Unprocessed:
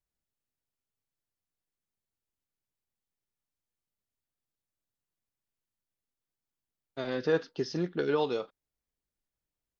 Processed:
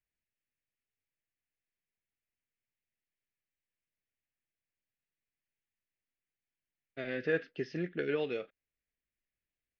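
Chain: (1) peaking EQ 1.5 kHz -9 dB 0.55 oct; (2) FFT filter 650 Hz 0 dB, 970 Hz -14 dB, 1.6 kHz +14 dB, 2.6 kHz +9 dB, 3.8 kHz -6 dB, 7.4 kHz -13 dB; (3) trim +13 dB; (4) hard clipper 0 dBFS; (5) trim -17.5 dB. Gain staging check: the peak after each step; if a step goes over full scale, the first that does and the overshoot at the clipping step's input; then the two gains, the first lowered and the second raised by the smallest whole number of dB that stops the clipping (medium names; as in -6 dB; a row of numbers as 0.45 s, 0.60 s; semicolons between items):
-17.0 dBFS, -15.0 dBFS, -2.0 dBFS, -2.0 dBFS, -19.5 dBFS; nothing clips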